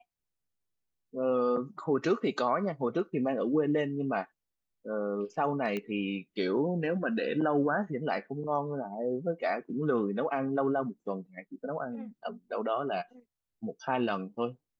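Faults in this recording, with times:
0:05.77: click −22 dBFS

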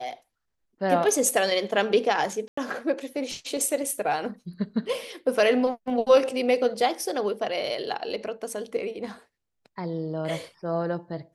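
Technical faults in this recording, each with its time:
0:02.48–0:02.57: drop-out 94 ms

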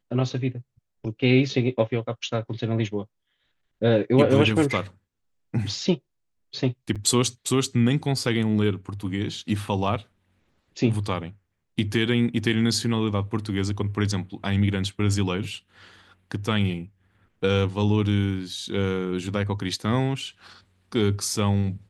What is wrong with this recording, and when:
0:06.95–0:06.96: drop-out 6.8 ms

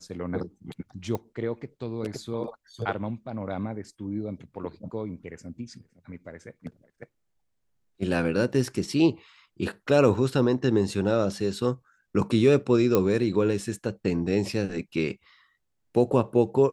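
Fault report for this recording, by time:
0:01.15: click −18 dBFS
0:12.95: click −9 dBFS

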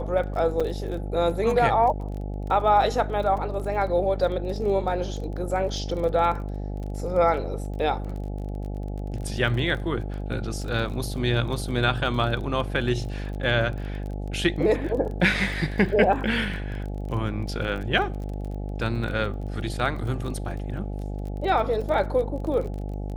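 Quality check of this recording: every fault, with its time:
mains buzz 50 Hz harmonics 17 −31 dBFS
surface crackle 26 per second −33 dBFS
0:00.60–0:00.61: drop-out 5.2 ms

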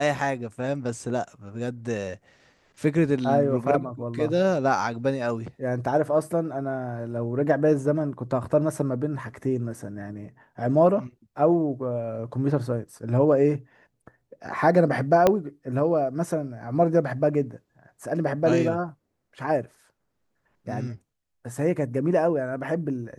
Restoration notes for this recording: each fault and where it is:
0:15.27: click −6 dBFS

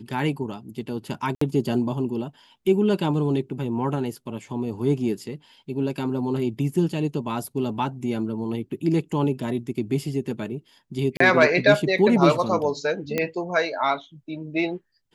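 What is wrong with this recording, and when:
0:01.35–0:01.41: drop-out 64 ms
0:11.17–0:11.20: drop-out 34 ms
0:13.18: click −10 dBFS

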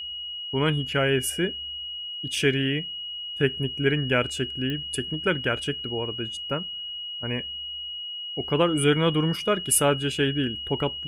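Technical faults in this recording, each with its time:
whistle 2,900 Hz −32 dBFS
0:04.70: click −19 dBFS

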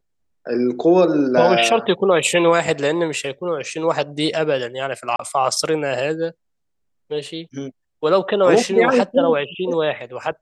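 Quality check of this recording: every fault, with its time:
0:05.16–0:05.19: drop-out 33 ms

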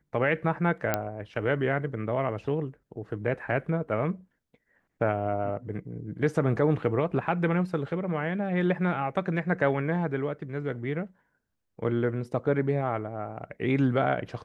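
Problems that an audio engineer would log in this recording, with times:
0:00.94: click −10 dBFS

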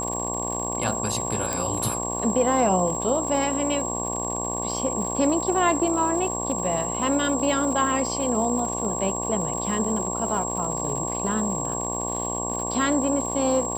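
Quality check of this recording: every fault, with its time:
mains buzz 60 Hz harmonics 19 −31 dBFS
surface crackle 140 per second −32 dBFS
whistle 7,600 Hz −29 dBFS
0:01.53: click −11 dBFS

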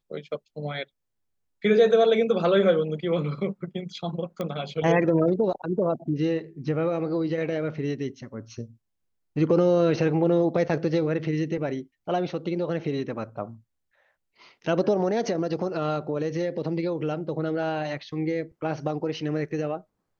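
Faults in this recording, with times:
0:04.41: click −18 dBFS

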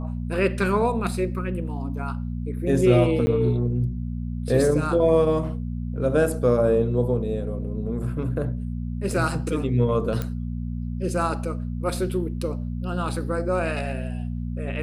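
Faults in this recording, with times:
mains hum 60 Hz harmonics 4 −29 dBFS
0:03.26–0:03.27: drop-out 10 ms
0:10.22: click −14 dBFS

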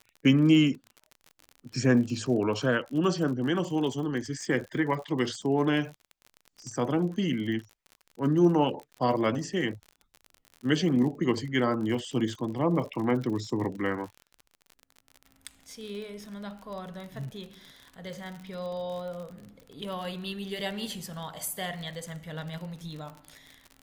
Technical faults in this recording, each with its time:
surface crackle 49 per second −36 dBFS

